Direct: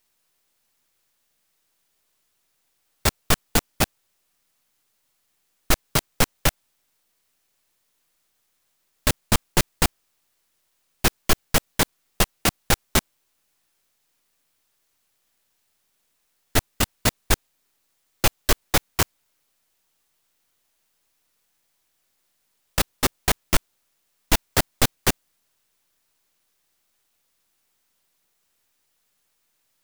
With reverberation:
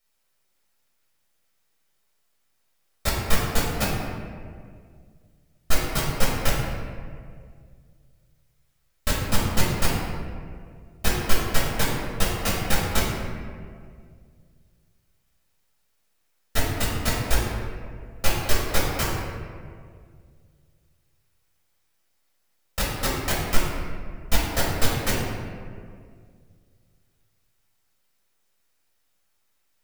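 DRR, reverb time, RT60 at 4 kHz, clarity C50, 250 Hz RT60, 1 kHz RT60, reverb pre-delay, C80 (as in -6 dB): -6.5 dB, 2.1 s, 1.1 s, 0.0 dB, 2.4 s, 1.8 s, 4 ms, 2.0 dB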